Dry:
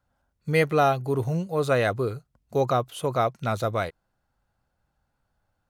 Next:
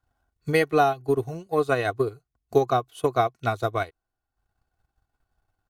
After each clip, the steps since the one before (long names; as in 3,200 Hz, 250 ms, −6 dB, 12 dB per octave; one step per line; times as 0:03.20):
comb filter 2.7 ms, depth 61%
transient designer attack +8 dB, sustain −8 dB
level −3.5 dB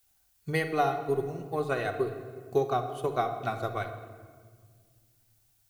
rectangular room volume 2,200 cubic metres, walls mixed, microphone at 1.1 metres
background noise blue −62 dBFS
level −7 dB